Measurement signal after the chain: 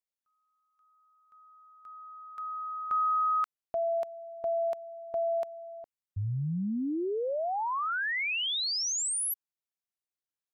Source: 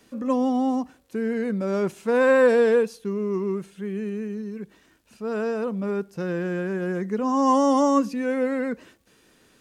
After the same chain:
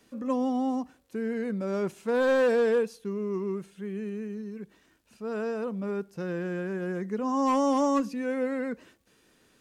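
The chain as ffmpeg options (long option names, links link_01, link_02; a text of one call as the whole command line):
ffmpeg -i in.wav -af "volume=14.5dB,asoftclip=hard,volume=-14.5dB,volume=-5dB" out.wav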